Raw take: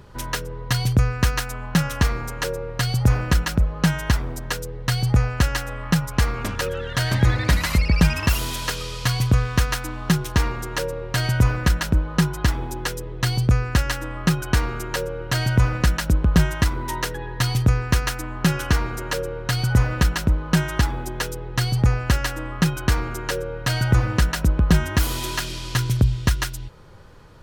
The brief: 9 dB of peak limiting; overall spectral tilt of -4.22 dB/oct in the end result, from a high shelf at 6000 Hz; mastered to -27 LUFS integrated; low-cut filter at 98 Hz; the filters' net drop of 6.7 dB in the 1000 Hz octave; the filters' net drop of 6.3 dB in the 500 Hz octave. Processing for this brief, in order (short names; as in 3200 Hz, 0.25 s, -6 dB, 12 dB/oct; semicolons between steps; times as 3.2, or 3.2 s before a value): HPF 98 Hz; bell 500 Hz -6 dB; bell 1000 Hz -7.5 dB; high shelf 6000 Hz +3 dB; gain +0.5 dB; limiter -14.5 dBFS